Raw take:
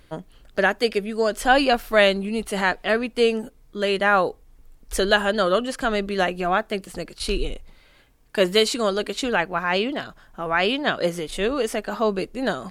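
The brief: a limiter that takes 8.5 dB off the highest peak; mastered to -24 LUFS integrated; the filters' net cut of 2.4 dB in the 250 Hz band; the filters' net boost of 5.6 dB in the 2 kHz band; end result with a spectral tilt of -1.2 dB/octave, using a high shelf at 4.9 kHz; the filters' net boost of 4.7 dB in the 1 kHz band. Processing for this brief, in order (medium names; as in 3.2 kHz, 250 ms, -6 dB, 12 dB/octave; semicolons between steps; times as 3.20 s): peaking EQ 250 Hz -3.5 dB; peaking EQ 1 kHz +5.5 dB; peaking EQ 2 kHz +6 dB; treble shelf 4.9 kHz -5 dB; trim -2.5 dB; peak limiter -9.5 dBFS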